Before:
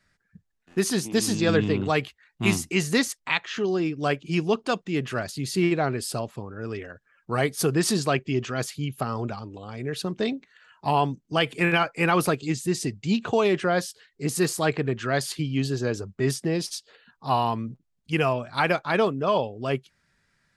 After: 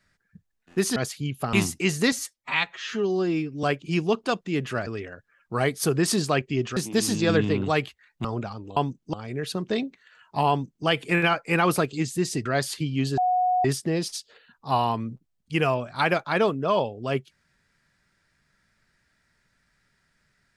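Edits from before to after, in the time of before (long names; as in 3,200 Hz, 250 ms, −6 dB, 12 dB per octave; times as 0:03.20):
0:00.96–0:02.44: swap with 0:08.54–0:09.11
0:03.03–0:04.04: time-stretch 1.5×
0:05.27–0:06.64: remove
0:10.99–0:11.36: duplicate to 0:09.63
0:12.95–0:15.04: remove
0:15.76–0:16.23: beep over 731 Hz −19 dBFS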